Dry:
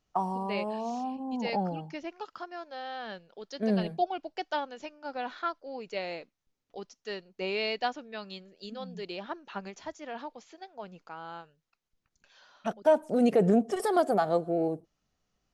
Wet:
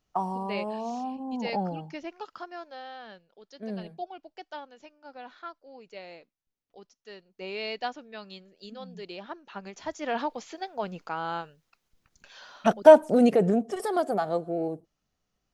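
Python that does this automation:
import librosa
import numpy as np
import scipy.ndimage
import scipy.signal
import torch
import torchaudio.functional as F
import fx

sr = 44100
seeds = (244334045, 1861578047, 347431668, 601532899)

y = fx.gain(x, sr, db=fx.line((2.59, 0.5), (3.27, -8.5), (7.12, -8.5), (7.74, -2.0), (9.6, -2.0), (10.09, 10.0), (12.9, 10.0), (13.55, -1.5)))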